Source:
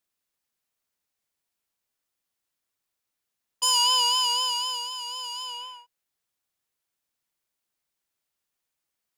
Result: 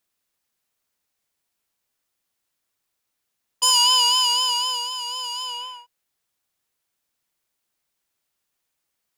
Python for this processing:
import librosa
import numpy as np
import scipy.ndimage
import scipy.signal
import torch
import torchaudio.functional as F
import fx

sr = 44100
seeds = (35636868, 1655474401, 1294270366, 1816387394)

y = fx.highpass(x, sr, hz=730.0, slope=6, at=(3.7, 4.49))
y = y * librosa.db_to_amplitude(5.0)